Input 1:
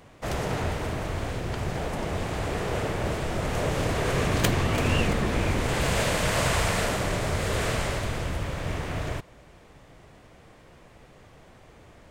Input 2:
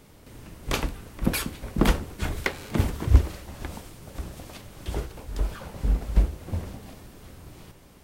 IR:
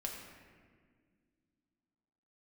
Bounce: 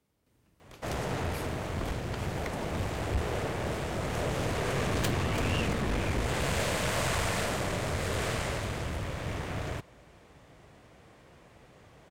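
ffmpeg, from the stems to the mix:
-filter_complex "[0:a]adelay=600,volume=-2dB[a];[1:a]acrossover=split=130[b][c];[c]acompressor=threshold=-25dB:ratio=6[d];[b][d]amix=inputs=2:normalize=0,volume=-9.5dB,afade=t=in:st=1:d=0.57:silence=0.237137[e];[a][e]amix=inputs=2:normalize=0,highpass=48,aeval=exprs='(tanh(14.1*val(0)+0.4)-tanh(0.4))/14.1':c=same"

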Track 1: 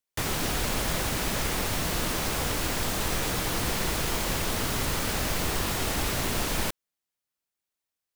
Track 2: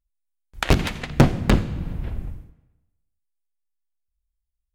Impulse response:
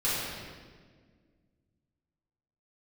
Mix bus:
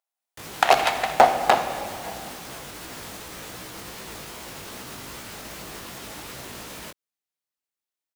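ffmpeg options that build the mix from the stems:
-filter_complex "[0:a]highpass=f=150:p=1,alimiter=level_in=0.5dB:limit=-24dB:level=0:latency=1:release=116,volume=-0.5dB,flanger=delay=15.5:depth=5.1:speed=2.6,adelay=200,volume=-1dB[a];[1:a]highpass=f=740:t=q:w=4.9,asoftclip=type=tanh:threshold=-5.5dB,volume=2.5dB,asplit=2[b][c];[c]volume=-18.5dB[d];[2:a]atrim=start_sample=2205[e];[d][e]afir=irnorm=-1:irlink=0[f];[a][b][f]amix=inputs=3:normalize=0"

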